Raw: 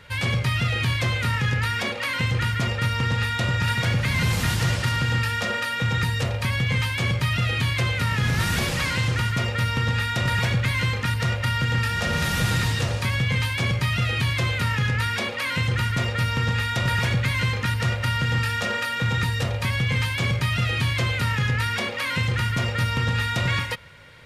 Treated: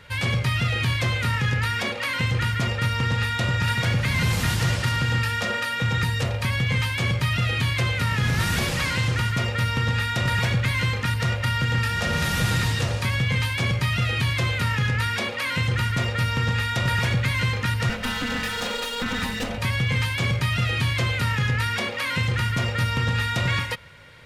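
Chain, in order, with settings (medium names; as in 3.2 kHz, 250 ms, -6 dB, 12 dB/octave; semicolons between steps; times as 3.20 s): 17.89–19.58 s: comb filter that takes the minimum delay 4 ms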